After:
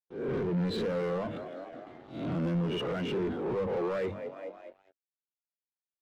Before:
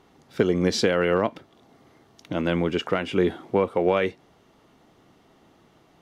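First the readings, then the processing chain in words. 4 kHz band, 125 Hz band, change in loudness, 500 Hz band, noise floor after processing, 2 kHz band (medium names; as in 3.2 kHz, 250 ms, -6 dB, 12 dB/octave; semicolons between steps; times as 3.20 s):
-10.0 dB, -3.5 dB, -8.5 dB, -8.5 dB, under -85 dBFS, -12.5 dB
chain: reverse spectral sustain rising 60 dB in 0.46 s; elliptic low-pass 4 kHz; hum notches 50/100/150/200/250/300 Hz; gate with hold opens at -45 dBFS; dynamic bell 130 Hz, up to +7 dB, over -39 dBFS, Q 1.1; peak limiter -14 dBFS, peak gain reduction 8 dB; on a send: frequency-shifting echo 210 ms, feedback 53%, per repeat +48 Hz, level -20.5 dB; on the sum: compression 1.5:1, threshold -44 dBFS, peak gain reduction 9 dB; waveshaping leveller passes 5; in parallel at -6 dB: overload inside the chain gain 29.5 dB; on the sum: spectral contrast expander 1.5:1; trim -5 dB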